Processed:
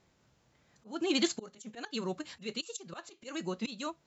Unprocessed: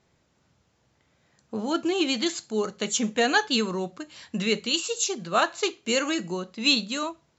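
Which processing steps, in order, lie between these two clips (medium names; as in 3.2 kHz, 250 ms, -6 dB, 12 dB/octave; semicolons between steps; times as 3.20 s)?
slow attack 759 ms; time stretch by phase-locked vocoder 0.55×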